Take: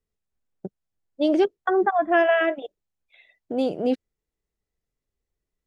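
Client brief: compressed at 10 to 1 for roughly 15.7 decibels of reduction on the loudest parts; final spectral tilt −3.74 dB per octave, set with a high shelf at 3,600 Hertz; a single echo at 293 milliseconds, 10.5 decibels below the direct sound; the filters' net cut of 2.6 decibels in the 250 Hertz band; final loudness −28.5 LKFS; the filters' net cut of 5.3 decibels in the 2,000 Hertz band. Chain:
parametric band 250 Hz −3.5 dB
parametric band 2,000 Hz −8 dB
high-shelf EQ 3,600 Hz +4.5 dB
downward compressor 10 to 1, threshold −33 dBFS
single-tap delay 293 ms −10.5 dB
level +9.5 dB

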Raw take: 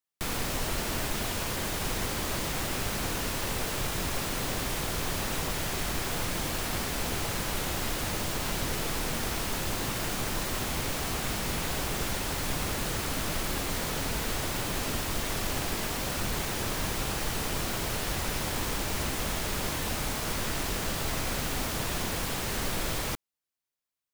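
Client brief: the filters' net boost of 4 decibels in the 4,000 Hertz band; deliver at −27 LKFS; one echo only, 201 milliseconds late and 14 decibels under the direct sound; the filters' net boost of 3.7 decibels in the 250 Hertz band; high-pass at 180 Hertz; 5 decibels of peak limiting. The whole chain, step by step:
high-pass filter 180 Hz
parametric band 250 Hz +6.5 dB
parametric band 4,000 Hz +5 dB
brickwall limiter −22.5 dBFS
single-tap delay 201 ms −14 dB
level +4 dB

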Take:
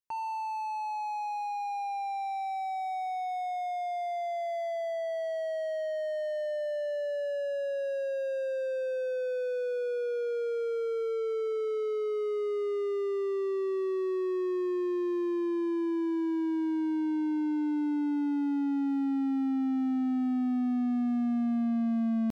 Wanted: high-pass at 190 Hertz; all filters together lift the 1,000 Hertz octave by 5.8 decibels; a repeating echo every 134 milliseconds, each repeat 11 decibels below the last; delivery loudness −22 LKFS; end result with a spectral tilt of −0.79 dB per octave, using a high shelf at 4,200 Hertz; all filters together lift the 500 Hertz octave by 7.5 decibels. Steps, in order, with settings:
high-pass filter 190 Hz
parametric band 500 Hz +8.5 dB
parametric band 1,000 Hz +3.5 dB
high-shelf EQ 4,200 Hz +6.5 dB
repeating echo 134 ms, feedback 28%, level −11 dB
level +3.5 dB

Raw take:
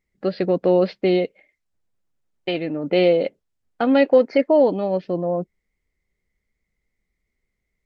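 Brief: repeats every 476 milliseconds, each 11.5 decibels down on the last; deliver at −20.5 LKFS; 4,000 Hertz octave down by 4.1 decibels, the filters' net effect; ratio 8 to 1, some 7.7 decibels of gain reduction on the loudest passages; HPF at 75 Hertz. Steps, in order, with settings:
high-pass filter 75 Hz
parametric band 4,000 Hz −6 dB
downward compressor 8 to 1, threshold −18 dBFS
repeating echo 476 ms, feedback 27%, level −11.5 dB
level +4.5 dB

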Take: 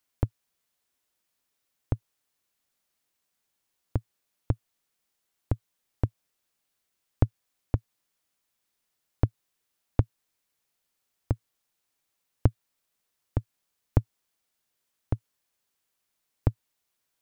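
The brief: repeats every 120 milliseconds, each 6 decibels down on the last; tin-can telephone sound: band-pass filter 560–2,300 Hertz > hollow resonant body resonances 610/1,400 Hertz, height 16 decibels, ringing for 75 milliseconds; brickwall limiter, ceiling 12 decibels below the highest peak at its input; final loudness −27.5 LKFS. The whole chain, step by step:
brickwall limiter −18 dBFS
band-pass filter 560–2,300 Hz
repeating echo 120 ms, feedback 50%, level −6 dB
hollow resonant body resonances 610/1,400 Hz, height 16 dB, ringing for 75 ms
level +24.5 dB

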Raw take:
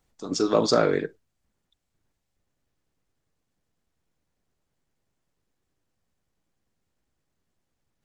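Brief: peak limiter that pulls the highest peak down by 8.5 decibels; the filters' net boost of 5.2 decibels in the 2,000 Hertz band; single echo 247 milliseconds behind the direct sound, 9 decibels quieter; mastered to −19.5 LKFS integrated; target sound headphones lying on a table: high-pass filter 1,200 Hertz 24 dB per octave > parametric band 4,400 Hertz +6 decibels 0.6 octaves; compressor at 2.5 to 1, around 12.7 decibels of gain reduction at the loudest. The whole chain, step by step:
parametric band 2,000 Hz +7.5 dB
downward compressor 2.5 to 1, threshold −34 dBFS
brickwall limiter −26.5 dBFS
high-pass filter 1,200 Hz 24 dB per octave
parametric band 4,400 Hz +6 dB 0.6 octaves
single-tap delay 247 ms −9 dB
level +20.5 dB

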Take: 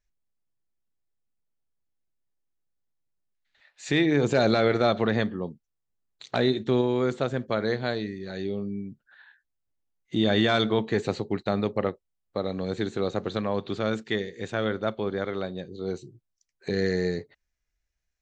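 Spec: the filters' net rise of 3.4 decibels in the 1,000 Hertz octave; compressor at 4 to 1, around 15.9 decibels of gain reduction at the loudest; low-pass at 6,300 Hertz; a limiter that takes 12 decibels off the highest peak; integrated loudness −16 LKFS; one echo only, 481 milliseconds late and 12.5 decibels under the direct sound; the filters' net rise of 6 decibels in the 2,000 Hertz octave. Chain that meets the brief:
low-pass filter 6,300 Hz
parametric band 1,000 Hz +3 dB
parametric band 2,000 Hz +6.5 dB
downward compressor 4 to 1, threshold −36 dBFS
brickwall limiter −29.5 dBFS
single-tap delay 481 ms −12.5 dB
level +26 dB

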